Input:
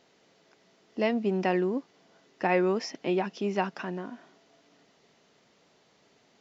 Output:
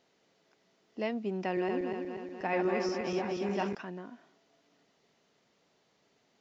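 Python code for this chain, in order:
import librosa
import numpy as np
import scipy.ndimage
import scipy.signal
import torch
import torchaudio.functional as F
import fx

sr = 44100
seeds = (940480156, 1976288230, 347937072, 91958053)

y = fx.reverse_delay_fb(x, sr, ms=120, feedback_pct=76, wet_db=-3.0, at=(1.45, 3.75))
y = y * 10.0 ** (-7.0 / 20.0)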